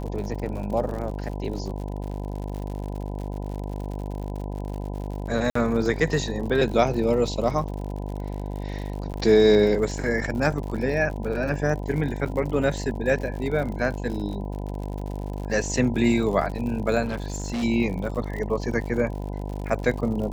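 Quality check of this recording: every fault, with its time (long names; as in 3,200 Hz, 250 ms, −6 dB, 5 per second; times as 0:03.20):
mains buzz 50 Hz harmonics 20 −31 dBFS
surface crackle 79 per second −33 dBFS
0:05.50–0:05.55: drop-out 54 ms
0:09.13–0:09.14: drop-out 9.5 ms
0:12.25–0:12.26: drop-out 7.1 ms
0:17.05–0:17.64: clipping −24.5 dBFS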